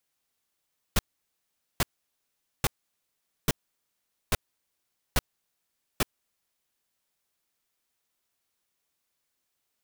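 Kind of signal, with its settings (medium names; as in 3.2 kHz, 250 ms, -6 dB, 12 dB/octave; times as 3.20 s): noise bursts pink, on 0.03 s, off 0.81 s, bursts 7, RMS -22.5 dBFS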